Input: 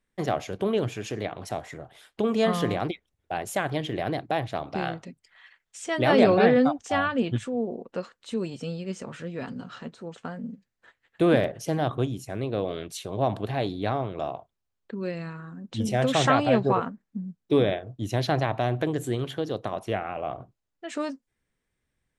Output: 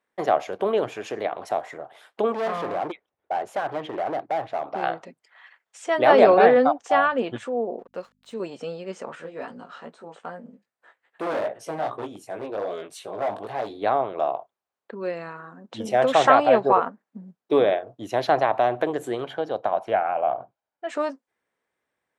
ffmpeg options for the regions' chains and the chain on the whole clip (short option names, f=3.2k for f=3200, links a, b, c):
-filter_complex "[0:a]asettb=1/sr,asplit=3[a][b][c];[a]atrim=end=2.324[d];[b]atrim=start=2.32:end=4.83,asetpts=PTS-STARTPTS,afade=t=in:d=0.004:c=qsin,afade=t=out:st=2.506:d=0.004:c=qsin,lowpass=f=2.5k:p=1,asoftclip=type=hard:threshold=-28dB[e];[c]atrim=start=4.826[f];[d][e]acrossfade=d=0.004:c1=hsin:c2=qsin[g];[g][f]acrossfade=d=0.004:c1=qsin:c2=hsin,asettb=1/sr,asplit=3[h][i][j];[h]atrim=end=7.794[k];[i]atrim=start=7.79:end=8.4,asetpts=PTS-STARTPTS,afade=t=in:d=0.004:c=qsin,afade=t=out:st=0.606:d=0.004:c=qsin,equalizer=f=950:w=0.39:g=-8,aeval=exprs='sgn(val(0))*max(abs(val(0))-0.00119,0)':c=same,aeval=exprs='val(0)+0.00141*(sin(2*PI*50*n/s)+sin(2*PI*2*50*n/s)/2+sin(2*PI*3*50*n/s)/3+sin(2*PI*4*50*n/s)/4+sin(2*PI*5*50*n/s)/5)':c=same[l];[j]atrim=start=8.396[m];[k][l]acrossfade=d=0.004:c1=hsin:c2=qsin[n];[n][m]acrossfade=d=0.004:c1=qsin:c2=hsin,asettb=1/sr,asplit=3[o][p][q];[o]atrim=end=9.154[r];[p]atrim=start=9.15:end=13.82,asetpts=PTS-STARTPTS,afade=t=in:d=0.004:c=qsin,afade=t=out:st=4.666:d=0.004:c=qsin,equalizer=f=8.6k:t=o:w=0.21:g=8,flanger=delay=16.5:depth=3.3:speed=2.5,asoftclip=type=hard:threshold=-28dB[s];[q]atrim=start=13.816[t];[r][s]acrossfade=d=0.004:c1=hsin:c2=qsin[u];[u][t]acrossfade=d=0.004:c1=qsin:c2=hsin,asettb=1/sr,asplit=3[v][w][x];[v]atrim=end=19.244[y];[w]atrim=start=19.24:end=20.87,asetpts=PTS-STARTPTS,afade=t=in:d=0.004:c=qsin,afade=t=out:st=1.626:d=0.004:c=qsin,highshelf=f=5.8k:g=-11,aecho=1:1:1.3:0.36,atrim=end_sample=71883[z];[x]atrim=start=20.866[aa];[y][z]acrossfade=d=0.004:c1=hsin:c2=qsin[ab];[ab][aa]acrossfade=d=0.004:c1=qsin:c2=hsin,highpass=f=390:p=1,equalizer=f=760:w=0.41:g=14,volume=-5dB"